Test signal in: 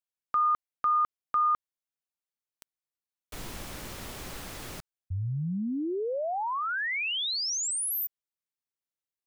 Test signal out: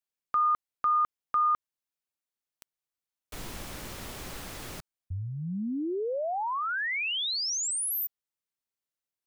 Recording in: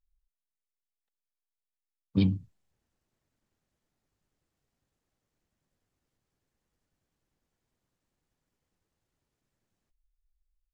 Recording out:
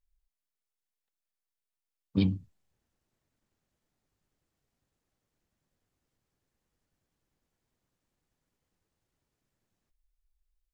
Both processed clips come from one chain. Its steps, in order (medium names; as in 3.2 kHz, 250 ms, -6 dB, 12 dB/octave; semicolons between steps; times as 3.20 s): dynamic bell 130 Hz, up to -5 dB, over -45 dBFS, Q 1.8